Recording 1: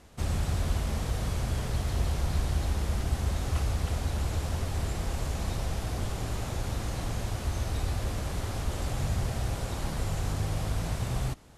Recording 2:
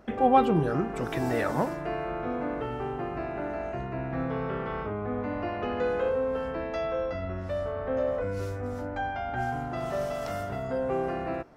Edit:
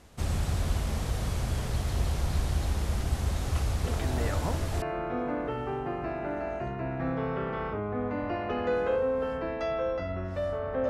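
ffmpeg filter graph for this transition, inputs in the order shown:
-filter_complex "[1:a]asplit=2[s0][s1];[0:a]apad=whole_dur=10.89,atrim=end=10.89,atrim=end=4.822[s2];[s1]atrim=start=1.948:end=8.02[s3];[s0]atrim=start=0.97:end=1.95,asetpts=PTS-STARTPTS,volume=0.447,afade=t=in:d=0.004:c=hsin,afade=t=out:st=0.976:d=0.004:c=hsin,adelay=3840[s4];[s2][s3]acrossfade=d=0.004:c1=hsin:c2=hsin[s5];[s5][s4]amix=inputs=2:normalize=0"

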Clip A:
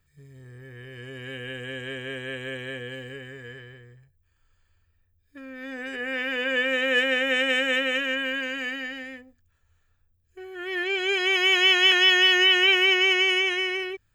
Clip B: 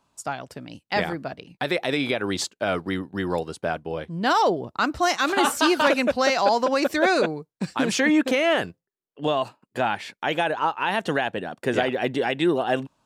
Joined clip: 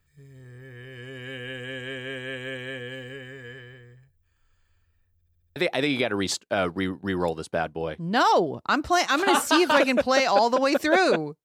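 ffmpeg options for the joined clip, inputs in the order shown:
-filter_complex "[0:a]apad=whole_dur=11.44,atrim=end=11.44,asplit=6[s0][s1][s2][s3][s4][s5];[s0]atrim=end=5.212[s6];[s1]atrim=start=5.138:end=5.212[s7];[s2]atrim=start=5.138:end=5.212[s8];[s3]atrim=start=5.138:end=5.212[s9];[s4]atrim=start=5.138:end=5.212[s10];[s5]atrim=start=5.138:end=5.212[s11];[1:a]atrim=start=1.658:end=7.54[s12];[s6][s7]acrossfade=d=0.004:c1=hsin:c2=hsin[s13];[s13][s8]acrossfade=d=0.004:c1=hsin:c2=hsin[s14];[s14][s9]acrossfade=d=0.004:c1=hsin:c2=hsin[s15];[s15][s10]acrossfade=d=0.004:c1=hsin:c2=hsin[s16];[s16][s11]acrossfade=d=0.004:c1=hsin:c2=hsin[s17];[s17][s12]acrossfade=d=0.004:c1=hsin:c2=hsin"

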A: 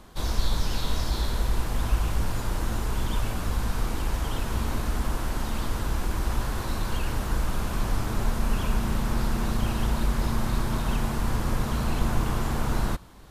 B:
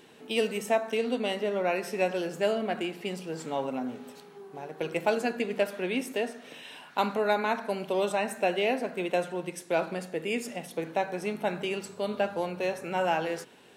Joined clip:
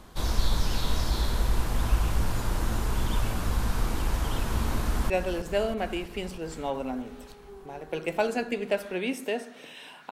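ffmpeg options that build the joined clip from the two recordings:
-filter_complex "[0:a]apad=whole_dur=10.11,atrim=end=10.11,atrim=end=5.102[s0];[1:a]atrim=start=1.978:end=6.99[s1];[s0][s1]acrossfade=d=0.004:c1=hsin:c2=hsin,asplit=2[s2][s3];[s3]afade=t=in:st=4.81:d=0.01,afade=t=out:st=5.1:d=0.01,aecho=0:1:320|640|960|1280|1600|1920|2240|2560|2880|3200|3520|3840:0.334965|0.251224|0.188418|0.141314|0.105985|0.0794889|0.0596167|0.0447125|0.0335344|0.0251508|0.0188631|0.0141473[s4];[s2][s4]amix=inputs=2:normalize=0"

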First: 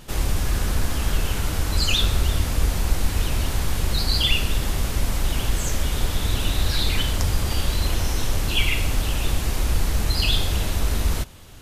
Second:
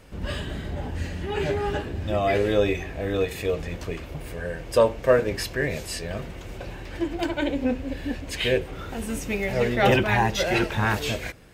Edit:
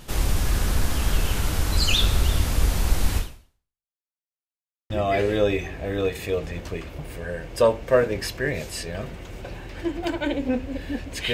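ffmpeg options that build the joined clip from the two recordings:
-filter_complex "[0:a]apad=whole_dur=11.33,atrim=end=11.33,asplit=2[s0][s1];[s0]atrim=end=3.94,asetpts=PTS-STARTPTS,afade=t=out:st=3.17:d=0.77:c=exp[s2];[s1]atrim=start=3.94:end=4.9,asetpts=PTS-STARTPTS,volume=0[s3];[1:a]atrim=start=2.06:end=8.49,asetpts=PTS-STARTPTS,afade=t=in:d=0.004:c=hsin[s4];[s2][s3][s4]concat=n=3:v=0:a=1"

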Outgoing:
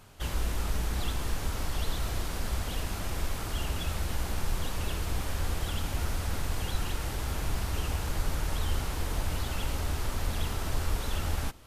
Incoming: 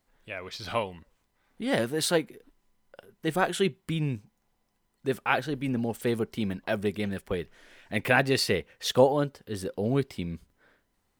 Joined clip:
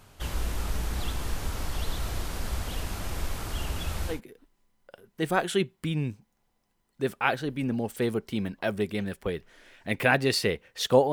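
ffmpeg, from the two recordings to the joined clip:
-filter_complex "[0:a]apad=whole_dur=11.12,atrim=end=11.12,atrim=end=4.21,asetpts=PTS-STARTPTS[s0];[1:a]atrim=start=2.12:end=9.17,asetpts=PTS-STARTPTS[s1];[s0][s1]acrossfade=d=0.14:c1=tri:c2=tri"

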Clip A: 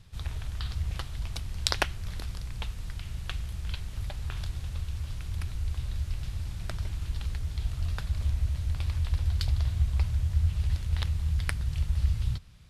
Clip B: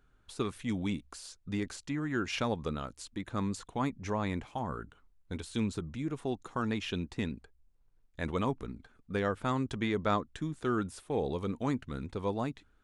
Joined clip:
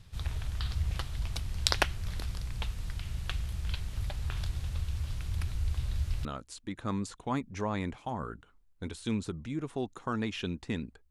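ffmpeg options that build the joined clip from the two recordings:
-filter_complex "[0:a]apad=whole_dur=11.1,atrim=end=11.1,atrim=end=6.252[s0];[1:a]atrim=start=2.738:end=7.59[s1];[s0][s1]acrossfade=d=0.004:c1=hsin:c2=hsin"

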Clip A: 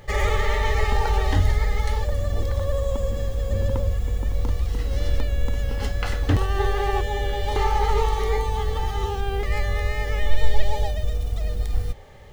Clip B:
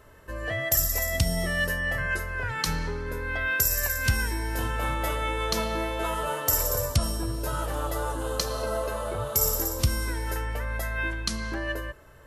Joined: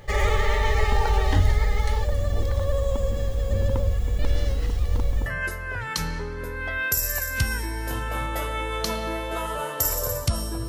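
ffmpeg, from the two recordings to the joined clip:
-filter_complex "[0:a]apad=whole_dur=10.68,atrim=end=10.68,asplit=2[s0][s1];[s0]atrim=end=4.192[s2];[s1]atrim=start=4.188:end=5.262,asetpts=PTS-STARTPTS,areverse[s3];[1:a]atrim=start=1.938:end=7.36[s4];[s2][s3]acrossfade=d=0.004:c1=hsin:c2=hsin[s5];[s5][s4]acrossfade=d=0.004:c1=hsin:c2=hsin"

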